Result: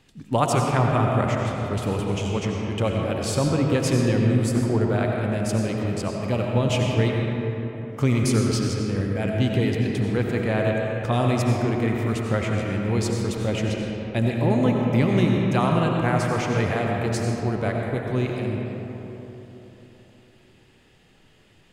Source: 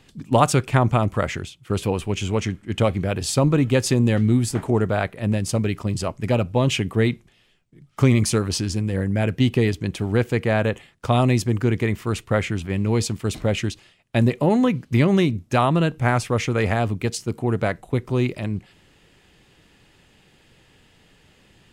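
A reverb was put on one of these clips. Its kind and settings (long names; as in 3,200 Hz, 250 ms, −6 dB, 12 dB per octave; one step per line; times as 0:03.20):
comb and all-pass reverb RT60 3.7 s, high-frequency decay 0.45×, pre-delay 50 ms, DRR −0.5 dB
level −5 dB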